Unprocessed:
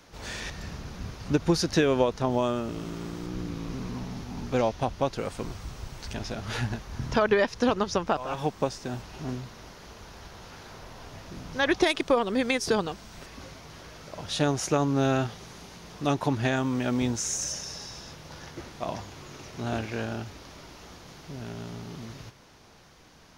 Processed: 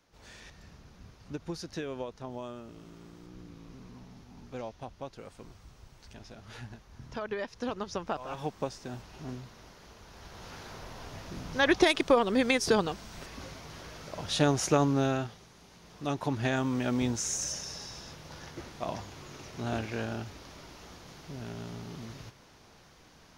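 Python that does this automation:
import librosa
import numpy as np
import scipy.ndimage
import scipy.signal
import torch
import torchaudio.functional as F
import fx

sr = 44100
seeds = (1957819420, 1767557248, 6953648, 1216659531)

y = fx.gain(x, sr, db=fx.line((7.11, -14.5), (8.26, -6.5), (10.05, -6.5), (10.49, 0.0), (14.84, 0.0), (15.51, -11.5), (16.58, -2.5)))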